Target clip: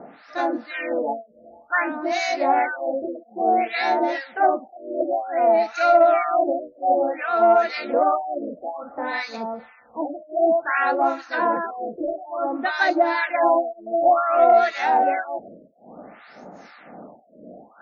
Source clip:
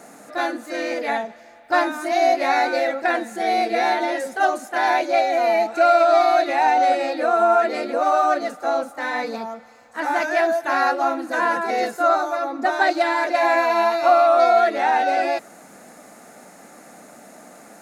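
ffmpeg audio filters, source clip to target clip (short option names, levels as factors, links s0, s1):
-filter_complex "[0:a]areverse,acompressor=mode=upward:threshold=0.0158:ratio=2.5,areverse,acrossover=split=1100[s0][s1];[s0]aeval=exprs='val(0)*(1-1/2+1/2*cos(2*PI*2*n/s))':c=same[s2];[s1]aeval=exprs='val(0)*(1-1/2-1/2*cos(2*PI*2*n/s))':c=same[s3];[s2][s3]amix=inputs=2:normalize=0,acontrast=29,afftfilt=real='re*lt(b*sr/1024,640*pow(7000/640,0.5+0.5*sin(2*PI*0.56*pts/sr)))':imag='im*lt(b*sr/1024,640*pow(7000/640,0.5+0.5*sin(2*PI*0.56*pts/sr)))':win_size=1024:overlap=0.75,volume=0.891"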